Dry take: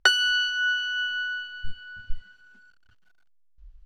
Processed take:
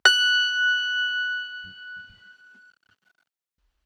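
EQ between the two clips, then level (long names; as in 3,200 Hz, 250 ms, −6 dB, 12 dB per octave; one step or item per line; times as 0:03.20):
high-pass filter 180 Hz 12 dB per octave
+3.0 dB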